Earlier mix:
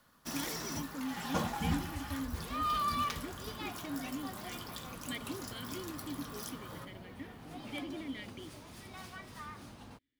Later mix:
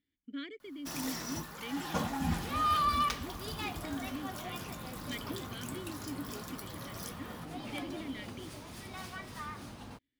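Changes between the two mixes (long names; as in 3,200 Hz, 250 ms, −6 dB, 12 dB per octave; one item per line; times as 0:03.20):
first sound: entry +0.60 s
second sound +4.0 dB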